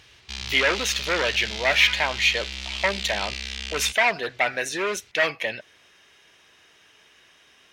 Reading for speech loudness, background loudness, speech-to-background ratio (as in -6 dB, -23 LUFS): -23.0 LUFS, -31.0 LUFS, 8.0 dB